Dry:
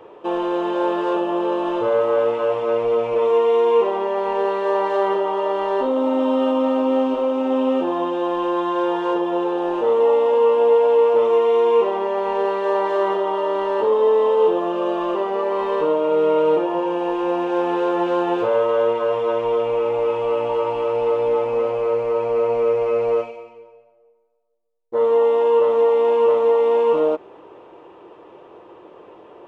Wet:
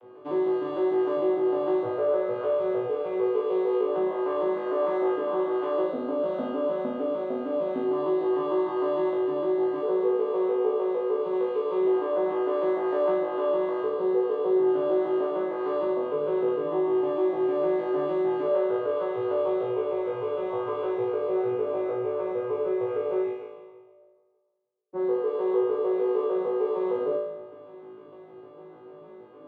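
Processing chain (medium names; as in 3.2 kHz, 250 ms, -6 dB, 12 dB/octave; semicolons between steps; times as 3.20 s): vocoder on a broken chord minor triad, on B2, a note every 152 ms; compression 2:1, threshold -24 dBFS, peak gain reduction 7 dB; on a send: flutter echo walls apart 3.2 m, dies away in 0.92 s; on the sum: trim -7 dB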